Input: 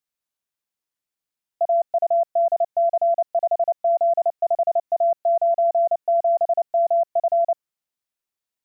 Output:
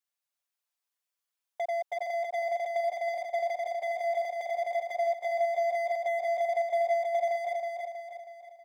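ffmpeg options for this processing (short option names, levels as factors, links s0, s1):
-af "highpass=f=560:w=0.5412,highpass=f=560:w=1.3066,aecho=1:1:7:0.87,acompressor=threshold=0.0708:ratio=3,atempo=1,volume=15.8,asoftclip=hard,volume=0.0631,aecho=1:1:320|640|960|1280|1600|1920:0.668|0.327|0.16|0.0786|0.0385|0.0189,volume=0.596"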